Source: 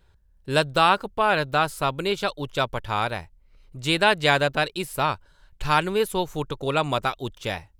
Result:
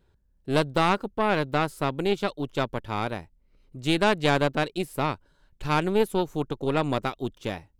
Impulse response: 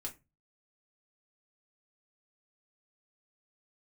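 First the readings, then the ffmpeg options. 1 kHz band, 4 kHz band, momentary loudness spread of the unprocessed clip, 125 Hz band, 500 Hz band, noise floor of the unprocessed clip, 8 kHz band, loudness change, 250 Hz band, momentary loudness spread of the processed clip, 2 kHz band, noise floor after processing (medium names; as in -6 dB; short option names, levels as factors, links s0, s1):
-4.5 dB, -6.0 dB, 11 LU, 0.0 dB, -1.0 dB, -59 dBFS, -5.5 dB, -2.5 dB, +3.0 dB, 10 LU, -5.5 dB, -65 dBFS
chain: -af "equalizer=f=270:w=0.74:g=11,aeval=exprs='0.841*(cos(1*acos(clip(val(0)/0.841,-1,1)))-cos(1*PI/2))+0.133*(cos(4*acos(clip(val(0)/0.841,-1,1)))-cos(4*PI/2))':c=same,volume=0.422"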